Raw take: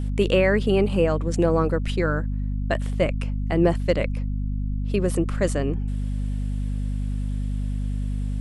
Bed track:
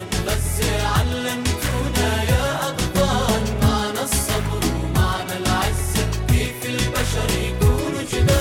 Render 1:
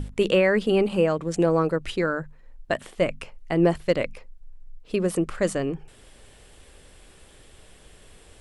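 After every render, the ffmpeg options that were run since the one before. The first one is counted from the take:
-af "bandreject=f=50:t=h:w=6,bandreject=f=100:t=h:w=6,bandreject=f=150:t=h:w=6,bandreject=f=200:t=h:w=6,bandreject=f=250:t=h:w=6"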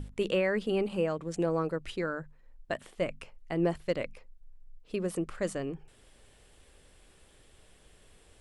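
-af "volume=-8.5dB"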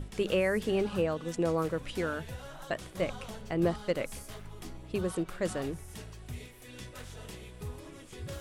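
-filter_complex "[1:a]volume=-24.5dB[a];[0:a][a]amix=inputs=2:normalize=0"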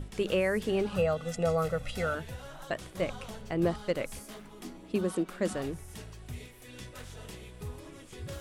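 -filter_complex "[0:a]asettb=1/sr,asplit=3[a][b][c];[a]atrim=end=0.964[d];[b]atrim=start=0.96:end=2.15,asetpts=PTS-STARTPTS,afade=t=in:d=0.004:c=qsin,afade=t=out:st=1.186:d=0.004:c=qsin,aecho=1:1:1.5:0.83,atrim=end_sample=52479[e];[c]atrim=start=2.146[f];[d][e]acrossfade=d=0.004:c1=hsin:c2=qsin[g];[g][f]acrossfade=d=0.004:c1=qsin:c2=hsin,asettb=1/sr,asplit=3[h][i][j];[h]atrim=end=4.194[k];[i]atrim=start=4.19:end=5.53,asetpts=PTS-STARTPTS,afade=t=in:d=0.004:c=qsin,afade=t=out:st=1.336:d=0.004:c=qsin,lowshelf=f=160:t=q:w=3:g=-9.5[l];[j]atrim=start=5.526[m];[k][l]acrossfade=d=0.004:c1=hsin:c2=qsin[n];[n][m]acrossfade=d=0.004:c1=qsin:c2=hsin"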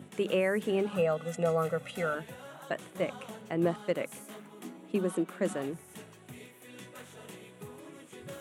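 -af "highpass=f=150:w=0.5412,highpass=f=150:w=1.3066,equalizer=f=4.9k:t=o:w=0.57:g=-11"

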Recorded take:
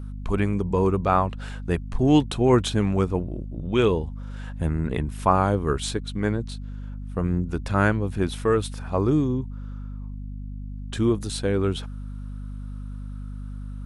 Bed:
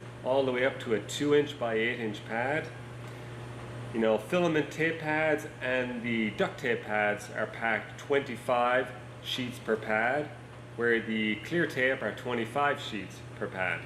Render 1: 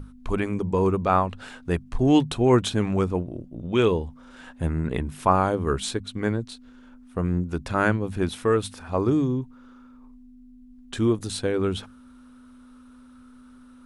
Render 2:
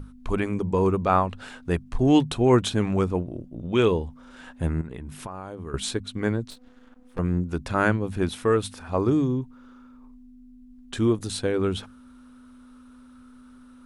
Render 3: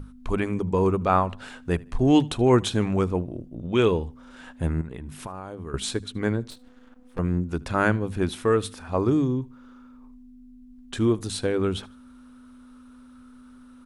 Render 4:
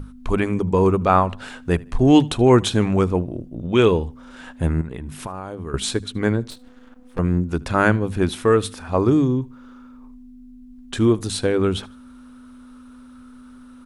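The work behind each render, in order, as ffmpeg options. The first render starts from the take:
-af "bandreject=f=50:t=h:w=6,bandreject=f=100:t=h:w=6,bandreject=f=150:t=h:w=6,bandreject=f=200:t=h:w=6"
-filter_complex "[0:a]asettb=1/sr,asplit=3[a][b][c];[a]atrim=end=4.814[d];[b]atrim=start=4.81:end=5.74,asetpts=PTS-STARTPTS,afade=t=in:d=0.004:c=qsin,afade=t=out:st=0.926:d=0.004:c=qsin,acompressor=threshold=-31dB:ratio=16:attack=3.2:release=140:knee=1:detection=peak[e];[c]atrim=start=5.736[f];[d][e]acrossfade=d=0.004:c1=hsin:c2=qsin[g];[g][f]acrossfade=d=0.004:c1=qsin:c2=hsin,asettb=1/sr,asplit=3[h][i][j];[h]atrim=end=6.504[k];[i]atrim=start=6.5:end=7.19,asetpts=PTS-STARTPTS,afade=t=in:d=0.004:c=qsin,afade=t=out:st=0.686:d=0.004:c=qsin,aeval=exprs='max(val(0),0)':c=same[l];[j]atrim=start=7.186[m];[k][l]acrossfade=d=0.004:c1=hsin:c2=qsin[n];[n][m]acrossfade=d=0.004:c1=qsin:c2=hsin"
-af "aecho=1:1:76|152:0.0631|0.0208"
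-af "volume=5dB,alimiter=limit=-3dB:level=0:latency=1"

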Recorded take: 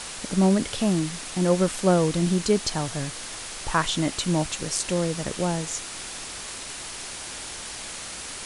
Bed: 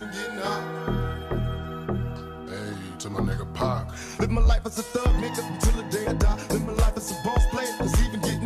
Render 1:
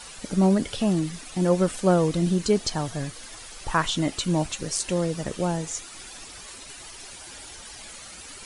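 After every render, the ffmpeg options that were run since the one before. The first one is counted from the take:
-af "afftdn=nr=11:nf=-37"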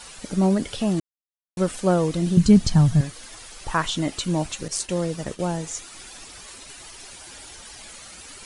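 -filter_complex "[0:a]asettb=1/sr,asplit=3[a][b][c];[a]atrim=end=2.374[d];[b]atrim=start=2.37:end=3.01,asetpts=PTS-STARTPTS,afade=t=in:d=0.004:c=qsin,afade=t=out:st=0.636:d=0.004:c=qsin,lowshelf=f=260:t=q:w=1.5:g=13[e];[c]atrim=start=3.006[f];[d][e]acrossfade=d=0.004:c1=hsin:c2=qsin[g];[g][f]acrossfade=d=0.004:c1=qsin:c2=hsin,asettb=1/sr,asplit=3[h][i][j];[h]atrim=end=4.684[k];[i]atrim=start=4.68:end=5.55,asetpts=PTS-STARTPTS,afade=t=in:d=0.004:c=qsin,afade=t=out:st=0.866:d=0.004:c=qsin,agate=range=-33dB:threshold=-33dB:ratio=3:release=100:detection=peak[l];[j]atrim=start=5.546[m];[k][l]acrossfade=d=0.004:c1=hsin:c2=qsin[n];[n][m]acrossfade=d=0.004:c1=qsin:c2=hsin,asplit=3[o][p][q];[o]atrim=end=1,asetpts=PTS-STARTPTS,afade=t=out:st=0.996:d=0.004:c=hsin[r];[p]atrim=start=1:end=1.57,asetpts=PTS-STARTPTS,volume=0[s];[q]atrim=start=1.57,asetpts=PTS-STARTPTS,afade=t=in:d=0.004:c=hsin[t];[r][s][t]concat=n=3:v=0:a=1"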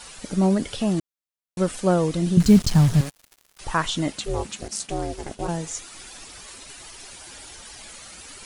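-filter_complex "[0:a]asettb=1/sr,asplit=3[a][b][c];[a]atrim=end=2.404[d];[b]atrim=start=2.4:end=3.59,asetpts=PTS-STARTPTS,afade=t=in:d=0.004:c=qsin,afade=t=out:st=1.186:d=0.004:c=qsin,acrusher=bits=4:mix=0:aa=0.5[e];[c]atrim=start=3.586[f];[d][e]acrossfade=d=0.004:c1=hsin:c2=qsin[g];[g][f]acrossfade=d=0.004:c1=qsin:c2=hsin,asplit=3[h][i][j];[h]afade=t=out:st=4.12:d=0.02[k];[i]aeval=exprs='val(0)*sin(2*PI*210*n/s)':c=same,afade=t=in:st=4.12:d=0.02,afade=t=out:st=5.47:d=0.02[l];[j]afade=t=in:st=5.47:d=0.02[m];[k][l][m]amix=inputs=3:normalize=0"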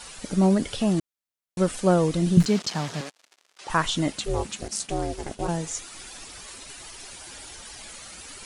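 -filter_complex "[0:a]asettb=1/sr,asplit=3[a][b][c];[a]atrim=end=2.454[d];[b]atrim=start=2.45:end=3.7,asetpts=PTS-STARTPTS,afade=t=in:d=0.004:c=qsin,afade=t=out:st=1.246:d=0.004:c=qsin,highpass=370,lowpass=6.5k[e];[c]atrim=start=3.696[f];[d][e]acrossfade=d=0.004:c1=hsin:c2=qsin[g];[g][f]acrossfade=d=0.004:c1=qsin:c2=hsin"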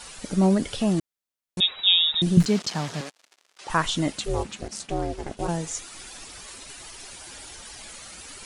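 -filter_complex "[0:a]asettb=1/sr,asplit=3[a][b][c];[a]atrim=end=1.604[d];[b]atrim=start=1.6:end=2.22,asetpts=PTS-STARTPTS,afade=t=in:d=0.004:c=qsin,afade=t=out:st=0.616:d=0.004:c=qsin,lowpass=f=3.3k:t=q:w=0.5098,lowpass=f=3.3k:t=q:w=0.6013,lowpass=f=3.3k:t=q:w=0.9,lowpass=f=3.3k:t=q:w=2.563,afreqshift=-3900[e];[c]atrim=start=2.216[f];[d][e]acrossfade=d=0.004:c1=hsin:c2=qsin[g];[g][f]acrossfade=d=0.004:c1=qsin:c2=hsin,asettb=1/sr,asplit=3[h][i][j];[h]atrim=end=4.434[k];[i]atrim=start=4.43:end=5.37,asetpts=PTS-STARTPTS,afade=t=in:d=0.004:c=qsin,afade=t=out:st=0.936:d=0.004:c=qsin,aemphasis=mode=reproduction:type=cd[l];[j]atrim=start=5.366[m];[k][l]acrossfade=d=0.004:c1=hsin:c2=qsin[n];[n][m]acrossfade=d=0.004:c1=qsin:c2=hsin"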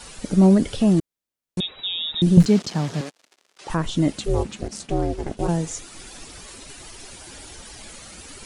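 -filter_complex "[0:a]acrossover=split=520[a][b];[a]acontrast=64[c];[b]alimiter=limit=-18dB:level=0:latency=1:release=401[d];[c][d]amix=inputs=2:normalize=0"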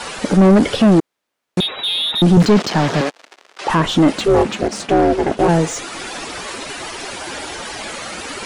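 -filter_complex "[0:a]asplit=2[a][b];[b]highpass=f=720:p=1,volume=28dB,asoftclip=type=tanh:threshold=-2dB[c];[a][c]amix=inputs=2:normalize=0,lowpass=f=1.4k:p=1,volume=-6dB"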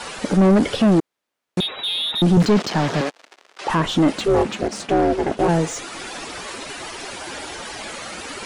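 -af "volume=-4dB"

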